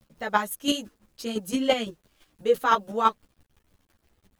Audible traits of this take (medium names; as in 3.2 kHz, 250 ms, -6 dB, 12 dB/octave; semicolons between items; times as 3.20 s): a quantiser's noise floor 10-bit, dither none; chopped level 5.9 Hz, depth 60%, duty 15%; a shimmering, thickened sound